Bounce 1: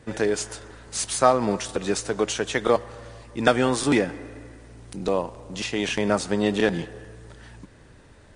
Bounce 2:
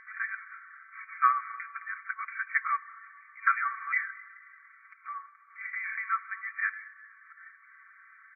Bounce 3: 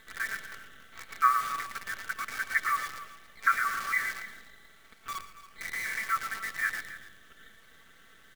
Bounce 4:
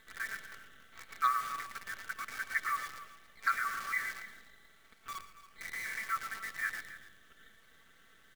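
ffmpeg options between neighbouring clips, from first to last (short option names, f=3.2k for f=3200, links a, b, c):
-af "aecho=1:1:4.5:0.89,afftfilt=real='re*between(b*sr/4096,1100,2400)':imag='im*between(b*sr/4096,1100,2400)':win_size=4096:overlap=0.75,acompressor=mode=upward:threshold=-46dB:ratio=2.5,volume=-1.5dB"
-filter_complex "[0:a]asplit=2[a][b];[b]aecho=0:1:113|226|339|452:0.316|0.133|0.0558|0.0234[c];[a][c]amix=inputs=2:normalize=0,acrusher=bits=7:dc=4:mix=0:aa=0.000001,asplit=2[d][e];[e]aecho=0:1:117|137|280:0.188|0.106|0.168[f];[d][f]amix=inputs=2:normalize=0"
-af "asoftclip=type=hard:threshold=-15.5dB,volume=-5.5dB"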